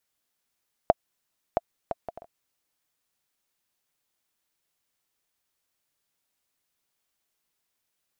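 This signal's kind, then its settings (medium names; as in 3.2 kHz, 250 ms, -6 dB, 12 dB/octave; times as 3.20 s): bouncing ball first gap 0.67 s, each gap 0.51, 677 Hz, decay 30 ms -4.5 dBFS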